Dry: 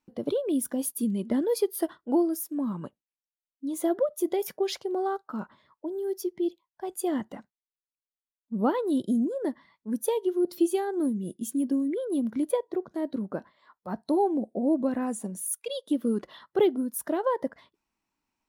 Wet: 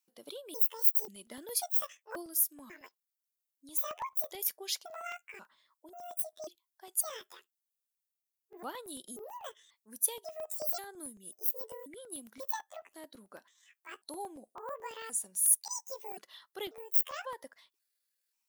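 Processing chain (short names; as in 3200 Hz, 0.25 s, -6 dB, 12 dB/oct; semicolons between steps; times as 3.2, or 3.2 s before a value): trilling pitch shifter +10 st, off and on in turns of 0.539 s; differentiator; crackling interface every 0.11 s, samples 64, zero, from 0.83; gain +4.5 dB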